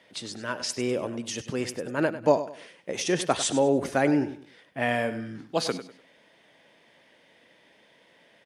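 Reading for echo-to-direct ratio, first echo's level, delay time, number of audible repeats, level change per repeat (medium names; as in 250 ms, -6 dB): -12.5 dB, -13.0 dB, 99 ms, 3, -10.5 dB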